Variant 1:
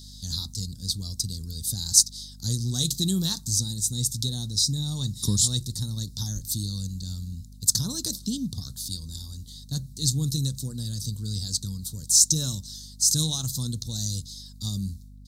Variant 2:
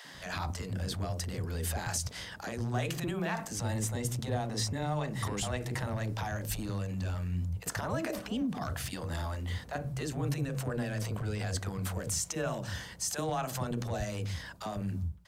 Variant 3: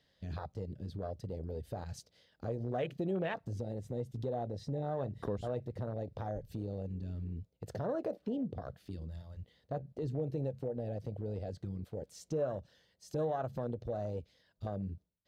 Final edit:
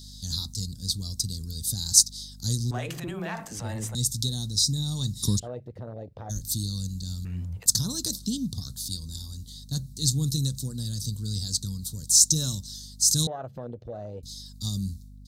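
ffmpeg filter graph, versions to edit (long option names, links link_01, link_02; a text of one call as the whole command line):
ffmpeg -i take0.wav -i take1.wav -i take2.wav -filter_complex "[1:a]asplit=2[link_01][link_02];[2:a]asplit=2[link_03][link_04];[0:a]asplit=5[link_05][link_06][link_07][link_08][link_09];[link_05]atrim=end=2.712[link_10];[link_01]atrim=start=2.708:end=3.952[link_11];[link_06]atrim=start=3.948:end=5.4[link_12];[link_03]atrim=start=5.38:end=6.31[link_13];[link_07]atrim=start=6.29:end=7.252[link_14];[link_02]atrim=start=7.248:end=7.662[link_15];[link_08]atrim=start=7.658:end=13.272[link_16];[link_04]atrim=start=13.268:end=14.232[link_17];[link_09]atrim=start=14.228[link_18];[link_10][link_11]acrossfade=duration=0.004:curve1=hsin:curve2=hsin[link_19];[link_19][link_12]acrossfade=duration=0.004:curve1=hsin:curve2=hsin[link_20];[link_20][link_13]acrossfade=duration=0.02:curve1=tri:curve2=tri[link_21];[link_21][link_14]acrossfade=duration=0.02:curve1=tri:curve2=tri[link_22];[link_22][link_15]acrossfade=duration=0.004:curve1=hsin:curve2=hsin[link_23];[link_23][link_16]acrossfade=duration=0.004:curve1=hsin:curve2=hsin[link_24];[link_24][link_17]acrossfade=duration=0.004:curve1=hsin:curve2=hsin[link_25];[link_25][link_18]acrossfade=duration=0.004:curve1=hsin:curve2=hsin" out.wav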